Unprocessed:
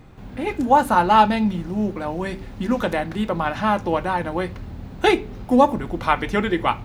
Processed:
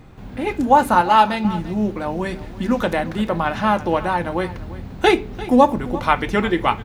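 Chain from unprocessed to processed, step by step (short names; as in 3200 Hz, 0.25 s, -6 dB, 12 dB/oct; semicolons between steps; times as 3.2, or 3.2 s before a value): 1.01–1.45 low shelf 330 Hz -9.5 dB; echo 0.345 s -17 dB; gain +2 dB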